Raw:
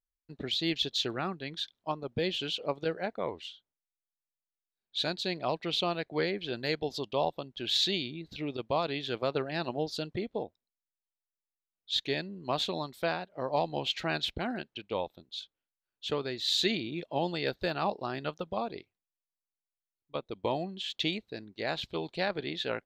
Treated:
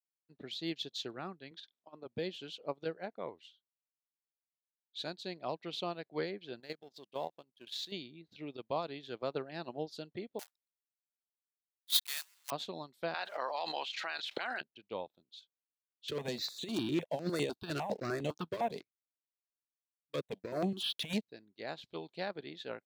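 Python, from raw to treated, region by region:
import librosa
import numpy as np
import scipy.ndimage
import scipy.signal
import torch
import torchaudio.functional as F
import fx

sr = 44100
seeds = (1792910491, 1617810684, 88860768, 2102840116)

y = fx.chain(x, sr, fx.bandpass_edges(low_hz=210.0, high_hz=4700.0),
    fx.over_compress(threshold_db=-37.0, ratio=-0.5), at=(1.51, 2.06))
y = fx.chain(y, sr, fx.law_mismatch(coded='A'),
    fx.peak_eq(hz=77.0, db=-10.0, octaves=0.88),
    fx.level_steps(step_db=10), at=(6.6, 7.92))
y = fx.chain(y, sr, fx.block_float(bits=3),
    fx.highpass(hz=1000.0, slope=24),
    fx.high_shelf(hz=3600.0, db=11.0), at=(10.39, 12.52))
y = fx.chain(y, sr, fx.highpass(hz=1300.0, slope=12),
    fx.high_shelf(hz=9000.0, db=-10.5),
    fx.env_flatten(amount_pct=100), at=(13.14, 14.61))
y = fx.chain(y, sr, fx.over_compress(threshold_db=-33.0, ratio=-0.5),
    fx.leveller(passes=3),
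    fx.phaser_held(hz=9.9, low_hz=210.0, high_hz=5000.0), at=(16.08, 21.28))
y = fx.dynamic_eq(y, sr, hz=2600.0, q=0.87, threshold_db=-41.0, ratio=4.0, max_db=-4)
y = scipy.signal.sosfilt(scipy.signal.butter(2, 130.0, 'highpass', fs=sr, output='sos'), y)
y = fx.upward_expand(y, sr, threshold_db=-49.0, expansion=1.5)
y = F.gain(torch.from_numpy(y), -2.5).numpy()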